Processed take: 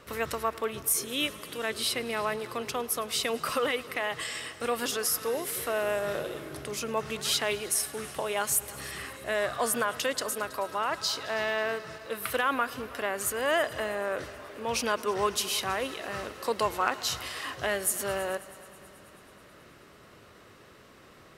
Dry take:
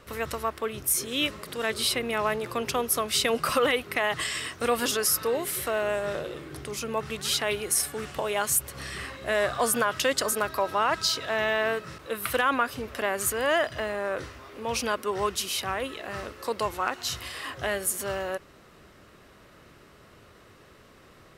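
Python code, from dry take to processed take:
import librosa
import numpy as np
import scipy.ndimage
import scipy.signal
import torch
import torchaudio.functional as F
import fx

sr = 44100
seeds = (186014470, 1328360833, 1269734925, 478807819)

p1 = fx.low_shelf(x, sr, hz=78.0, db=-8.5)
p2 = p1 + fx.echo_heads(p1, sr, ms=108, heads='all three', feedback_pct=64, wet_db=-23.5, dry=0)
p3 = fx.rider(p2, sr, range_db=10, speed_s=2.0)
y = p3 * librosa.db_to_amplitude(-3.5)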